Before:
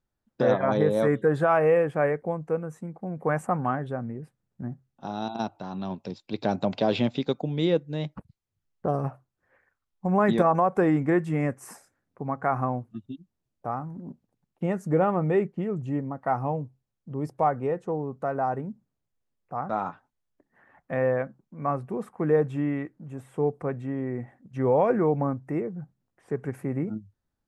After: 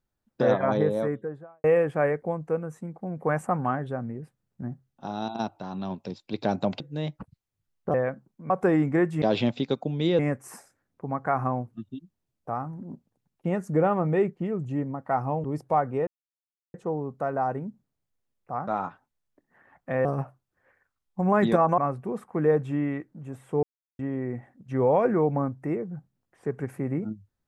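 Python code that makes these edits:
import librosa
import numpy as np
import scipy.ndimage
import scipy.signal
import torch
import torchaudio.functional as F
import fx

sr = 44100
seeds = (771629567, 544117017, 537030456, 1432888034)

y = fx.studio_fade_out(x, sr, start_s=0.59, length_s=1.05)
y = fx.edit(y, sr, fx.move(start_s=6.8, length_s=0.97, to_s=11.36),
    fx.swap(start_s=8.91, length_s=1.73, other_s=21.07, other_length_s=0.56),
    fx.cut(start_s=16.61, length_s=0.52),
    fx.insert_silence(at_s=17.76, length_s=0.67),
    fx.silence(start_s=23.48, length_s=0.36), tone=tone)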